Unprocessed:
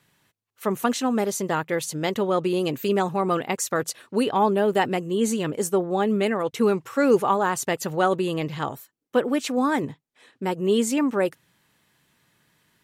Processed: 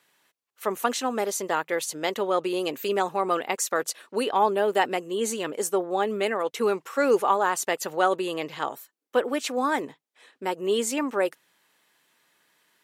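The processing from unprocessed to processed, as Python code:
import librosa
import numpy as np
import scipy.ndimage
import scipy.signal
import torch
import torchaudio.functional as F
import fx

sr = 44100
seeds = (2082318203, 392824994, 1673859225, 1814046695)

y = scipy.signal.sosfilt(scipy.signal.butter(2, 390.0, 'highpass', fs=sr, output='sos'), x)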